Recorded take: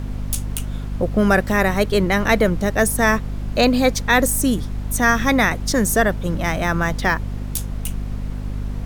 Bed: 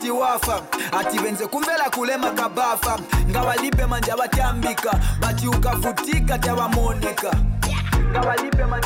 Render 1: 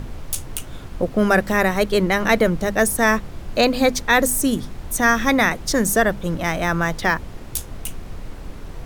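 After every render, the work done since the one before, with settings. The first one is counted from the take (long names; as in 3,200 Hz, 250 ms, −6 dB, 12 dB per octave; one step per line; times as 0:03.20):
mains-hum notches 50/100/150/200/250 Hz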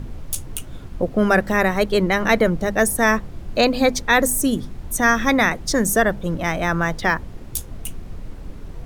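broadband denoise 6 dB, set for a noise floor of −36 dBFS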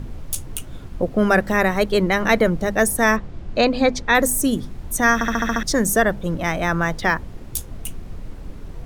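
0:03.16–0:04.15: high-frequency loss of the air 76 metres
0:05.14: stutter in place 0.07 s, 7 plays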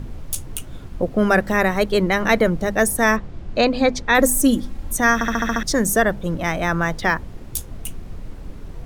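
0:04.18–0:04.93: comb filter 3.7 ms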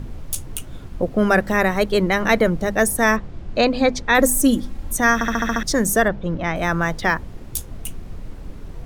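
0:06.08–0:06.56: high-frequency loss of the air 140 metres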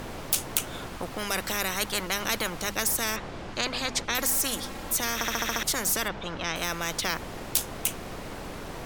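every bin compressed towards the loudest bin 4 to 1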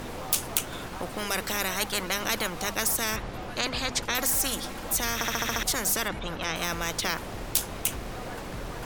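mix in bed −22 dB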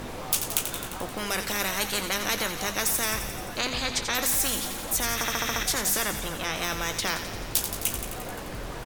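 double-tracking delay 20 ms −11.5 dB
delay with a high-pass on its return 87 ms, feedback 71%, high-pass 1,800 Hz, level −8 dB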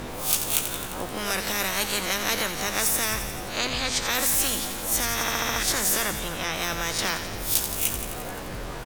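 peak hold with a rise ahead of every peak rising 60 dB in 0.41 s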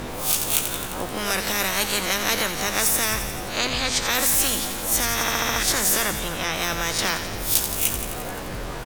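level +3 dB
brickwall limiter −2 dBFS, peak gain reduction 3 dB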